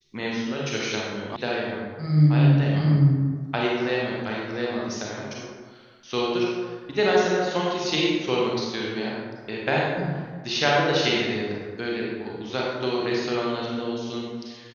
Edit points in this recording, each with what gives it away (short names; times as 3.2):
1.36 sound cut off